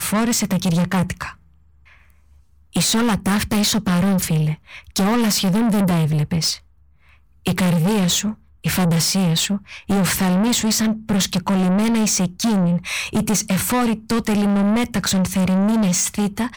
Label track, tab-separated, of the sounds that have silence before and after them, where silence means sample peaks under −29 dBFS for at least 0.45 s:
2.740000	6.560000	sound